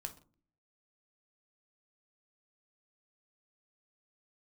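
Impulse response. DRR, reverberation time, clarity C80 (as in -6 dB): 6.0 dB, no single decay rate, 19.0 dB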